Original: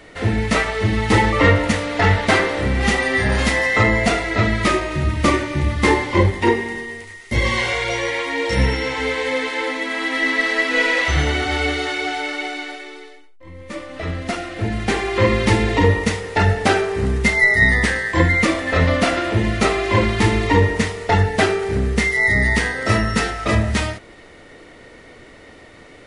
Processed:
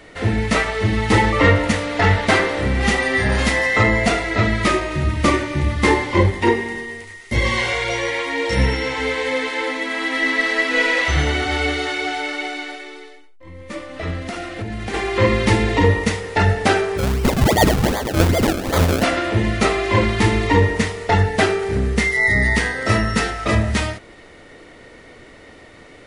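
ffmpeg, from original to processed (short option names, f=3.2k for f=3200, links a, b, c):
-filter_complex "[0:a]asplit=3[a][b][c];[a]afade=t=out:st=14.18:d=0.02[d];[b]acompressor=threshold=-23dB:ratio=6:attack=3.2:release=140:knee=1:detection=peak,afade=t=in:st=14.18:d=0.02,afade=t=out:st=14.93:d=0.02[e];[c]afade=t=in:st=14.93:d=0.02[f];[d][e][f]amix=inputs=3:normalize=0,asplit=3[g][h][i];[g]afade=t=out:st=16.97:d=0.02[j];[h]acrusher=samples=32:mix=1:aa=0.000001:lfo=1:lforange=32:lforate=2.6,afade=t=in:st=16.97:d=0.02,afade=t=out:st=19.02:d=0.02[k];[i]afade=t=in:st=19.02:d=0.02[l];[j][k][l]amix=inputs=3:normalize=0"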